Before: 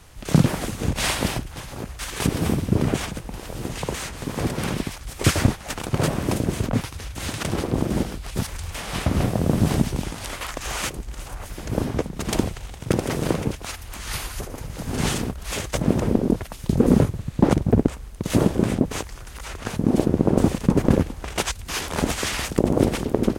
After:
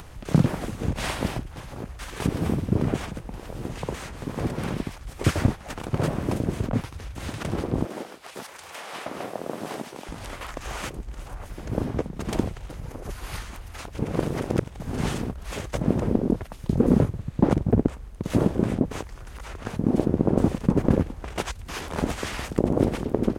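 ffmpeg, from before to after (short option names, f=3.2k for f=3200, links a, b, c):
-filter_complex "[0:a]asettb=1/sr,asplit=3[a][b][c];[a]atrim=end=7.854[d];[b]atrim=start=7.85:end=10.09,asetpts=PTS-STARTPTS,afade=t=in:d=0.004:c=qsin,afade=t=out:st=2.236:d=0.004:c=qsin,highpass=480[e];[c]atrim=start=10.086[f];[d][e]acrossfade=d=0.004:c1=hsin:c2=qsin[g];[g][f]acrossfade=d=0.004:c1=qsin:c2=hsin,asplit=3[h][i][j];[h]atrim=end=12.702[k];[i]atrim=start=12.698:end=14.802,asetpts=PTS-STARTPTS,areverse[l];[j]atrim=start=14.798[m];[k][l]acrossfade=d=0.004:c1=hsin:c2=hsin[n];[n][m]acrossfade=d=0.004:c1=hsin:c2=hsin,highshelf=f=2.5k:g=-9,acompressor=mode=upward:threshold=-32dB:ratio=2.5,volume=-2.5dB"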